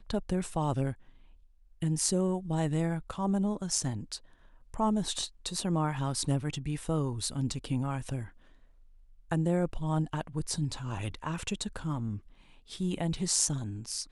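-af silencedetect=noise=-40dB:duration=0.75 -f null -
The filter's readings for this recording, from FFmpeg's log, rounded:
silence_start: 0.93
silence_end: 1.82 | silence_duration: 0.89
silence_start: 8.28
silence_end: 9.31 | silence_duration: 1.03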